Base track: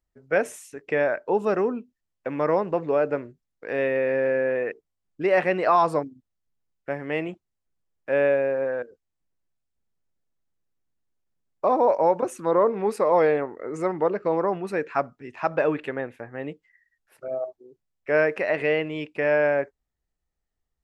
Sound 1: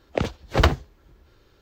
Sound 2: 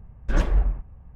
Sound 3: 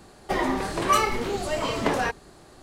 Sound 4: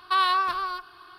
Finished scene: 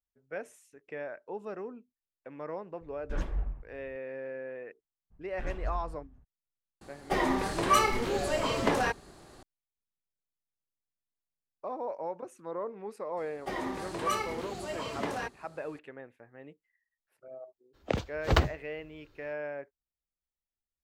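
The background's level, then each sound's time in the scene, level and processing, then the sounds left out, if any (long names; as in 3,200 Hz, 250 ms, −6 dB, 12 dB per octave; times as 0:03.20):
base track −16.5 dB
0:02.81: mix in 2 −12 dB
0:05.10: mix in 2 −15.5 dB, fades 0.02 s + feedback delay that plays each chunk backwards 121 ms, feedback 41%, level −9.5 dB
0:06.81: mix in 3 −3 dB
0:13.17: mix in 3 −10 dB + high-pass filter 55 Hz
0:17.73: mix in 1 −6.5 dB, fades 0.02 s
not used: 4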